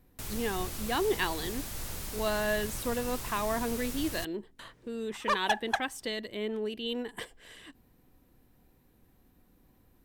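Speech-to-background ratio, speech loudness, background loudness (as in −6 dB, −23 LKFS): 5.5 dB, −33.0 LKFS, −38.5 LKFS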